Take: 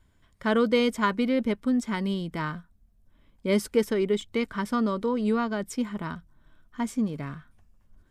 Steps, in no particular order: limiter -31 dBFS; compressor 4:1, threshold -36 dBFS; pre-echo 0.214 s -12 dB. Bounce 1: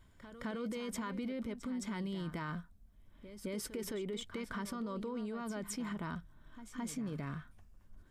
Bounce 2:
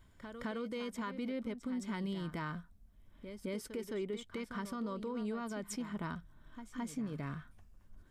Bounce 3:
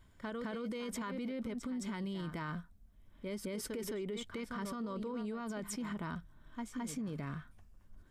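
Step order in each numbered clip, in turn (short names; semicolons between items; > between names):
limiter > compressor > pre-echo; compressor > pre-echo > limiter; pre-echo > limiter > compressor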